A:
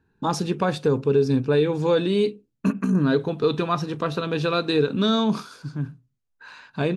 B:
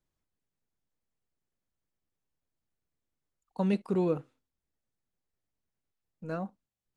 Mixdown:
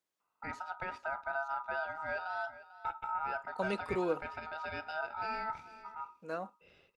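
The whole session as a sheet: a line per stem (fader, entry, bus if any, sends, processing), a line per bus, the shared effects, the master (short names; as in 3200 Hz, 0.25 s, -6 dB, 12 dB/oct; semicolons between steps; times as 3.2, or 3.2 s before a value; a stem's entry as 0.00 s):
-15.5 dB, 0.20 s, no send, echo send -16 dB, tone controls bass +3 dB, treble -12 dB; ring modulator 1100 Hz
+0.5 dB, 0.00 s, no send, no echo send, Bessel high-pass 500 Hz, order 2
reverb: off
echo: echo 0.446 s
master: dry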